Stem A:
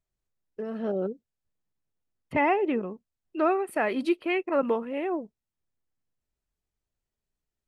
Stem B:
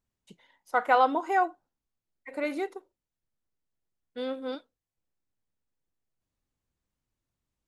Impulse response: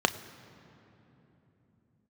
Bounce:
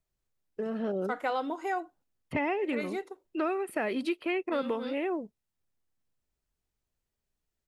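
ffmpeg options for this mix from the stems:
-filter_complex "[0:a]volume=1.5dB[a];[1:a]agate=range=-13dB:threshold=-55dB:ratio=16:detection=peak,adelay=350,volume=-2dB[b];[a][b]amix=inputs=2:normalize=0,acrossover=split=650|1300|3500[c][d][e][f];[c]acompressor=threshold=-30dB:ratio=4[g];[d]acompressor=threshold=-45dB:ratio=4[h];[e]acompressor=threshold=-37dB:ratio=4[i];[f]acompressor=threshold=-47dB:ratio=4[j];[g][h][i][j]amix=inputs=4:normalize=0"

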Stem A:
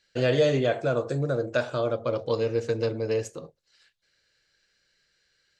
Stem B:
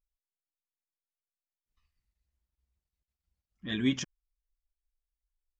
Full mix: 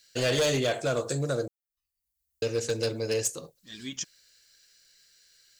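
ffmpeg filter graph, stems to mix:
-filter_complex "[0:a]volume=-2.5dB,asplit=3[a][b][c];[a]atrim=end=1.48,asetpts=PTS-STARTPTS,afade=t=out:st=1.476:d=0.004:c=hsin[d];[b]atrim=start=1.48:end=2.42,asetpts=PTS-STARTPTS,volume=0[e];[c]atrim=start=2.42,asetpts=PTS-STARTPTS,afade=t=in:d=0.004:c=hsin[f];[d][e][f]concat=n=3:v=0:a=1,asplit=2[g][h];[1:a]volume=-7dB[i];[h]apad=whole_len=246748[j];[i][j]sidechaincompress=threshold=-44dB:ratio=8:attack=6:release=743[k];[g][k]amix=inputs=2:normalize=0,highshelf=f=5.5k:g=9.5,crystalizer=i=3.5:c=0,asoftclip=type=hard:threshold=-21dB"

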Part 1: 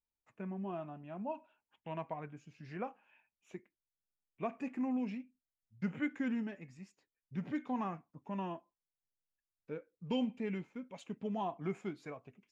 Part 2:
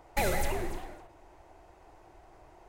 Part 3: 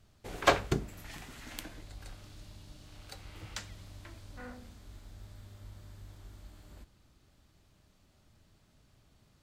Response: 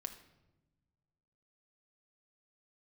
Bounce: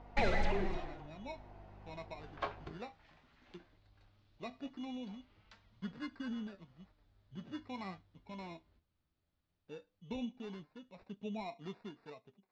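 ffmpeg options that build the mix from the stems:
-filter_complex "[0:a]acrusher=samples=14:mix=1:aa=0.000001,volume=-2.5dB[a];[1:a]aeval=exprs='val(0)+0.00251*(sin(2*PI*50*n/s)+sin(2*PI*2*50*n/s)/2+sin(2*PI*3*50*n/s)/3+sin(2*PI*4*50*n/s)/4+sin(2*PI*5*50*n/s)/5)':c=same,volume=1.5dB[b];[2:a]adynamicequalizer=threshold=0.00178:dfrequency=990:dqfactor=1.3:tfrequency=990:tqfactor=1.3:attack=5:release=100:ratio=0.375:range=3.5:mode=boostabove:tftype=bell,adelay=1950,volume=-15dB[c];[a][b][c]amix=inputs=3:normalize=0,lowpass=f=4.6k:w=0.5412,lowpass=f=4.6k:w=1.3066,flanger=delay=4.2:depth=8.3:regen=56:speed=0.17:shape=sinusoidal"

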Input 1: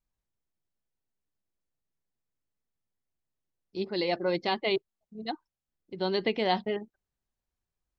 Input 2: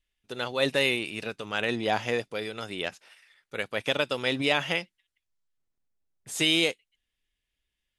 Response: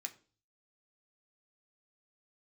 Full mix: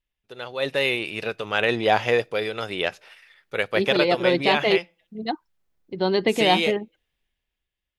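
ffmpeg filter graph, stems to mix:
-filter_complex "[0:a]highshelf=f=4k:g=-6,volume=-3.5dB,asplit=2[a][b];[1:a]equalizer=f=250:t=o:w=1:g=-5,equalizer=f=500:t=o:w=1:g=3,equalizer=f=8k:t=o:w=1:g=-10,volume=-5dB,asplit=2[c][d];[d]volume=-14dB[e];[b]apad=whole_len=352348[f];[c][f]sidechaincompress=threshold=-33dB:ratio=8:attack=41:release=780[g];[2:a]atrim=start_sample=2205[h];[e][h]afir=irnorm=-1:irlink=0[i];[a][g][i]amix=inputs=3:normalize=0,dynaudnorm=f=160:g=11:m=11.5dB"

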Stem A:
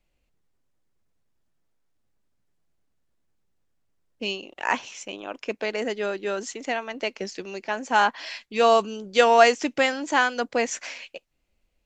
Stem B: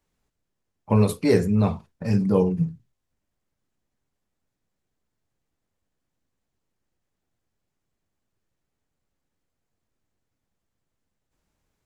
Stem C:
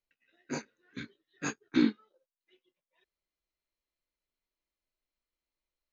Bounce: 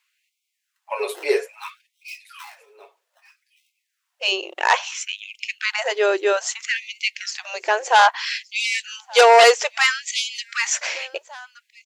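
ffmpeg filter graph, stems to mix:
-filter_complex "[0:a]aeval=exprs='0.75*sin(PI/2*3.16*val(0)/0.75)':c=same,volume=-4dB,asplit=2[a][b];[b]volume=-24dB[c];[1:a]deesser=0.5,equalizer=f=2.6k:w=1.5:g=10,aecho=1:1:7.2:0.8,volume=-3dB,asplit=2[d][e];[e]volume=-18.5dB[f];[2:a]equalizer=f=3.7k:w=0.67:g=13,acompressor=threshold=-33dB:ratio=6,acrusher=samples=19:mix=1:aa=0.000001,adelay=650,volume=-1.5dB,asplit=2[g][h];[h]volume=-21.5dB[i];[c][f][i]amix=inputs=3:normalize=0,aecho=0:1:1172:1[j];[a][d][g][j]amix=inputs=4:normalize=0,afftfilt=real='re*gte(b*sr/1024,310*pow(2100/310,0.5+0.5*sin(2*PI*0.61*pts/sr)))':imag='im*gte(b*sr/1024,310*pow(2100/310,0.5+0.5*sin(2*PI*0.61*pts/sr)))':win_size=1024:overlap=0.75"

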